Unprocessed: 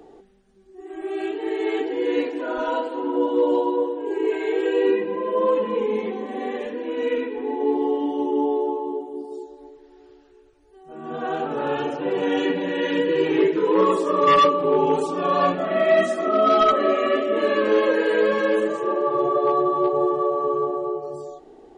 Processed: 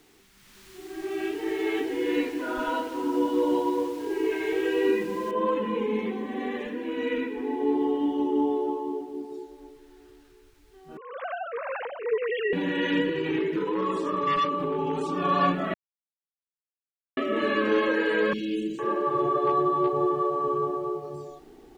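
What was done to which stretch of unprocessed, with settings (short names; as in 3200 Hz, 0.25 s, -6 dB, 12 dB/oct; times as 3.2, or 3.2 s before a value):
5.31 noise floor step -46 dB -62 dB
10.97–12.53 sine-wave speech
13.09–15.21 compressor, threshold -20 dBFS
15.74–17.17 mute
18.33–18.79 Chebyshev band-stop 360–2700 Hz, order 3
whole clip: LPF 2100 Hz 6 dB/oct; bell 580 Hz -12.5 dB 1.6 oct; AGC gain up to 11 dB; gain -6.5 dB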